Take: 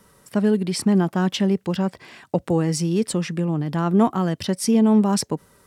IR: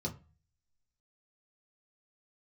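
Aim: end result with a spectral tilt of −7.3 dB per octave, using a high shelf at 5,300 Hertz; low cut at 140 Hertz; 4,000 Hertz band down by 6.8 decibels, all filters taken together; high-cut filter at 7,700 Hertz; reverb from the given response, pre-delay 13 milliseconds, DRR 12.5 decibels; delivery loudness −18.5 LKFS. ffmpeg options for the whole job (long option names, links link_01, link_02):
-filter_complex "[0:a]highpass=140,lowpass=7700,equalizer=frequency=4000:width_type=o:gain=-6,highshelf=frequency=5300:gain=-6,asplit=2[link_01][link_02];[1:a]atrim=start_sample=2205,adelay=13[link_03];[link_02][link_03]afir=irnorm=-1:irlink=0,volume=-14dB[link_04];[link_01][link_04]amix=inputs=2:normalize=0,volume=2.5dB"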